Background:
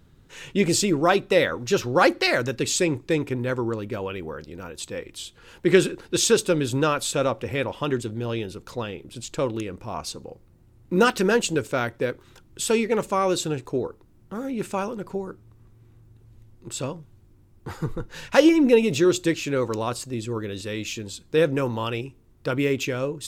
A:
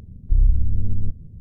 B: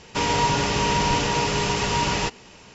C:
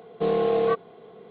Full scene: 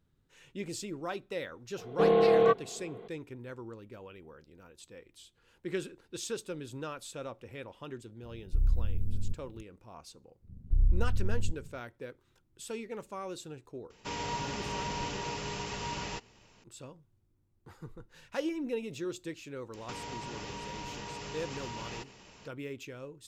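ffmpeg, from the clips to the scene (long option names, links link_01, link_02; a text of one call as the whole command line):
ffmpeg -i bed.wav -i cue0.wav -i cue1.wav -i cue2.wav -filter_complex "[1:a]asplit=2[link_01][link_02];[2:a]asplit=2[link_03][link_04];[0:a]volume=-18dB[link_05];[link_01]aemphasis=mode=production:type=50fm[link_06];[link_04]acompressor=threshold=-31dB:ratio=6:attack=3.2:release=140:knee=1:detection=peak[link_07];[3:a]atrim=end=1.3,asetpts=PTS-STARTPTS,volume=-0.5dB,afade=type=in:duration=0.004:curve=hsin,afade=type=out:start_time=1.296:duration=0.004:curve=hsin,adelay=1780[link_08];[link_06]atrim=end=1.4,asetpts=PTS-STARTPTS,volume=-10.5dB,afade=type=in:duration=0.004:curve=hsin,afade=type=out:start_time=1.396:duration=0.004:curve=hsin,adelay=8230[link_09];[link_02]atrim=end=1.4,asetpts=PTS-STARTPTS,volume=-9dB,afade=type=in:duration=0.1,afade=type=out:start_time=1.3:duration=0.1,adelay=10410[link_10];[link_03]atrim=end=2.74,asetpts=PTS-STARTPTS,volume=-14.5dB,afade=type=in:duration=0.004:curve=hsin,afade=type=out:start_time=2.736:duration=0.004:curve=hsin,adelay=13900[link_11];[link_07]atrim=end=2.74,asetpts=PTS-STARTPTS,volume=-8dB,afade=type=in:duration=0.004:curve=hsin,afade=type=out:start_time=2.736:duration=0.004:curve=hsin,adelay=19740[link_12];[link_05][link_08][link_09][link_10][link_11][link_12]amix=inputs=6:normalize=0" out.wav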